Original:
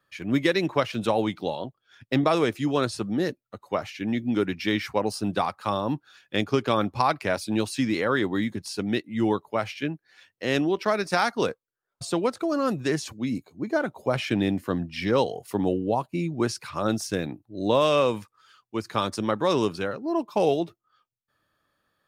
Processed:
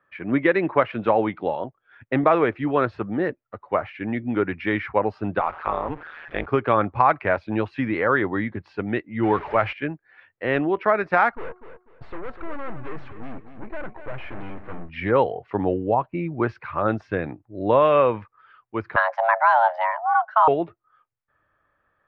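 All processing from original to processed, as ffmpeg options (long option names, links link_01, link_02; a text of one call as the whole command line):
ffmpeg -i in.wav -filter_complex "[0:a]asettb=1/sr,asplit=3[link_01][link_02][link_03];[link_01]atrim=end=5.394[link_04];[link_02]atrim=start=5.39:end=6.46,asetpts=PTS-STARTPTS,afade=type=in:duration=0.004:curve=qsin,afade=type=out:start_time=1.066:duration=0.004:curve=qsin,aeval=exprs='val(0)+0.5*0.0188*sgn(val(0))':channel_layout=same,highpass=frequency=240:poles=1,tremolo=f=160:d=0.919[link_05];[link_03]atrim=start=6.456[link_06];[link_04][link_05]acrossfade=duration=0.004:curve1=hsin:curve2=qsin[link_07];[link_07][link_06]acrossfade=duration=0.004:curve1=qsin:curve2=hsin,asettb=1/sr,asplit=3[link_08][link_09][link_10];[link_08]atrim=end=9.234[link_11];[link_09]atrim=start=9.23:end=9.73,asetpts=PTS-STARTPTS,afade=type=in:duration=0.004:curve=qsin,afade=type=out:start_time=0.496:duration=0.004:curve=qsin,aeval=exprs='val(0)+0.5*0.02*sgn(val(0))':channel_layout=same,highshelf=frequency=2600:gain=7.5[link_12];[link_10]atrim=start=9.726[link_13];[link_11][link_12]acrossfade=duration=0.004:curve1=hsin:curve2=qsin[link_14];[link_14][link_13]acrossfade=duration=0.004:curve1=qsin:curve2=hsin,asettb=1/sr,asplit=3[link_15][link_16][link_17];[link_15]atrim=end=11.314[link_18];[link_16]atrim=start=11.31:end=14.89,asetpts=PTS-STARTPTS,afade=type=in:duration=0.004:curve=qsin,afade=type=out:start_time=3.576:duration=0.004:curve=qsin,bandreject=frequency=363.6:width_type=h:width=4,bandreject=frequency=727.2:width_type=h:width=4,bandreject=frequency=1090.8:width_type=h:width=4,aeval=exprs='(tanh(63.1*val(0)+0.8)-tanh(0.8))/63.1':channel_layout=same,aecho=1:1:247|494|741:0.316|0.0854|0.0231,atrim=end_sample=157878[link_19];[link_17]atrim=start=14.886[link_20];[link_18][link_19]acrossfade=duration=0.004:curve1=hsin:curve2=qsin[link_21];[link_21][link_20]acrossfade=duration=0.004:curve1=qsin:curve2=hsin,asettb=1/sr,asplit=3[link_22][link_23][link_24];[link_22]atrim=end=18.964[link_25];[link_23]atrim=start=18.96:end=20.48,asetpts=PTS-STARTPTS,afade=type=in:duration=0.004:curve=qsin,afade=type=out:start_time=1.516:duration=0.004:curve=qsin,lowshelf=frequency=150:gain=4.5,afreqshift=460[link_26];[link_24]atrim=start=20.476[link_27];[link_25][link_26]acrossfade=duration=0.004:curve1=hsin:curve2=qsin[link_28];[link_28][link_27]acrossfade=duration=0.004:curve1=qsin:curve2=hsin,asubboost=boost=4:cutoff=95,lowpass=frequency=2100:width=0.5412,lowpass=frequency=2100:width=1.3066,lowshelf=frequency=240:gain=-9.5,volume=6.5dB" out.wav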